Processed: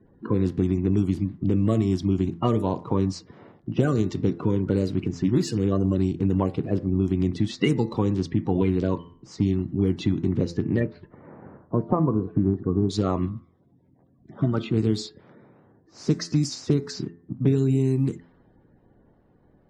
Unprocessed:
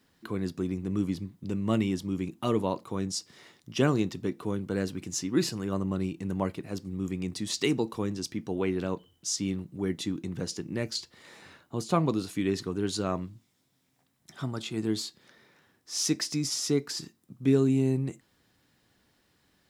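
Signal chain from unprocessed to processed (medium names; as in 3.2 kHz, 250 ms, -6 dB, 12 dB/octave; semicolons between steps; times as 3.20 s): coarse spectral quantiser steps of 30 dB; peaking EQ 63 Hz -5.5 dB 0.85 oct; de-esser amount 50%; bass shelf 350 Hz +11 dB; level-controlled noise filter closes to 780 Hz, open at -16.5 dBFS; compression 6:1, threshold -26 dBFS, peak gain reduction 14 dB; 10.79–12.89 s: low-pass 2.4 kHz -> 1 kHz 24 dB/octave; de-hum 85.43 Hz, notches 24; trim +8 dB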